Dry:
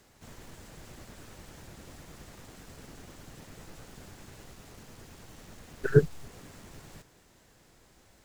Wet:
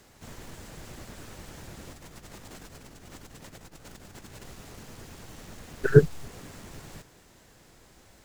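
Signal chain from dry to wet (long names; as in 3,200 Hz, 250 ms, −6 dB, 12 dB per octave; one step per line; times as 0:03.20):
0:01.93–0:04.45: compressor whose output falls as the input rises −51 dBFS, ratio −0.5
level +4.5 dB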